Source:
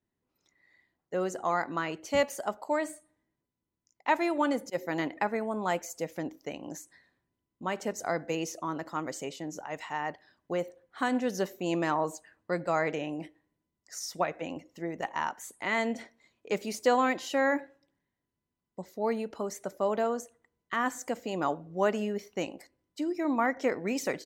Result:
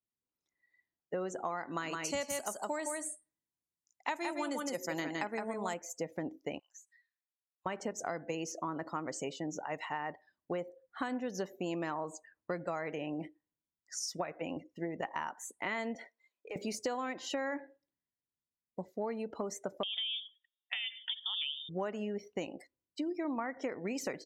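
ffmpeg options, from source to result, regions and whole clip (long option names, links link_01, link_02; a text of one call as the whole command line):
ffmpeg -i in.wav -filter_complex "[0:a]asettb=1/sr,asplit=3[link_01][link_02][link_03];[link_01]atrim=end=1.644[link_04];[link_02]atrim=start=1.64:end=5.74,asetpts=PTS-STARTPTS,afade=type=in:duration=0.004:curve=qsin,afade=type=out:start_time=4.096:duration=0.004:curve=qsin,equalizer=frequency=9200:width=0.45:gain=13.5,aecho=1:1:163:0.596,atrim=end_sample=180810[link_05];[link_03]atrim=start=5.736[link_06];[link_04][link_05]acrossfade=duration=0.004:curve1=hsin:curve2=qsin[link_07];[link_07][link_06]acrossfade=duration=0.004:curve1=qsin:curve2=hsin,asettb=1/sr,asplit=3[link_08][link_09][link_10];[link_08]atrim=end=6.594[link_11];[link_09]atrim=start=6.59:end=7.66,asetpts=PTS-STARTPTS,afade=type=in:duration=0.004:curve=qsin,afade=type=out:start_time=1.066:duration=0.004:curve=qsin,highpass=frequency=1500:width=0.5412,highpass=frequency=1500:width=1.3066,acompressor=threshold=-59dB:ratio=1.5:attack=3.2:release=140:knee=1:detection=peak[link_12];[link_10]atrim=start=7.656[link_13];[link_11][link_12]acrossfade=duration=0.004:curve1=hsin:curve2=qsin[link_14];[link_14][link_13]acrossfade=duration=0.004:curve1=qsin:curve2=hsin,asettb=1/sr,asplit=3[link_15][link_16][link_17];[link_15]atrim=end=15.954[link_18];[link_16]atrim=start=15.95:end=16.56,asetpts=PTS-STARTPTS,afade=type=in:duration=0.004:curve=qsin,afade=type=out:start_time=0.606:duration=0.004:curve=qsin,highpass=450,acompressor=threshold=-38dB:ratio=8:attack=3.2:release=140:knee=1:detection=peak,asoftclip=type=hard:threshold=-34dB[link_19];[link_17]atrim=start=16.556[link_20];[link_18][link_19]acrossfade=duration=0.004:curve1=hsin:curve2=qsin[link_21];[link_21][link_20]acrossfade=duration=0.004:curve1=qsin:curve2=hsin,asettb=1/sr,asplit=3[link_22][link_23][link_24];[link_22]atrim=end=19.834[link_25];[link_23]atrim=start=19.83:end=21.69,asetpts=PTS-STARTPTS,afade=type=in:duration=0.004:curve=qsin,afade=type=out:start_time=1.856:duration=0.004:curve=qsin,equalizer=frequency=720:width=2.2:gain=8,acompressor=threshold=-29dB:ratio=5:attack=3.2:release=140:knee=1:detection=peak,lowpass=frequency=3200:width_type=q:width=0.5098,lowpass=frequency=3200:width_type=q:width=0.6013,lowpass=frequency=3200:width_type=q:width=0.9,lowpass=frequency=3200:width_type=q:width=2.563,afreqshift=-3800[link_26];[link_24]atrim=start=21.686[link_27];[link_25][link_26]acrossfade=duration=0.004:curve1=hsin:curve2=qsin[link_28];[link_28][link_27]acrossfade=duration=0.004:curve1=qsin:curve2=hsin,afftdn=noise_reduction=18:noise_floor=-49,acompressor=threshold=-34dB:ratio=10,volume=1dB" out.wav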